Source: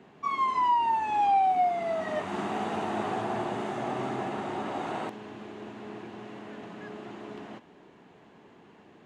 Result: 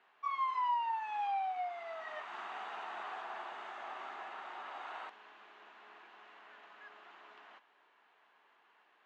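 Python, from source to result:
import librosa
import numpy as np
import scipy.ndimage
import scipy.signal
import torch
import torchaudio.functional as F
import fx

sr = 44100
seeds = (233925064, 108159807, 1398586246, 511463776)

y = fx.ladder_bandpass(x, sr, hz=1900.0, resonance_pct=20)
y = fx.peak_eq(y, sr, hz=2000.0, db=-4.5, octaves=0.98)
y = y * 10.0 ** (7.5 / 20.0)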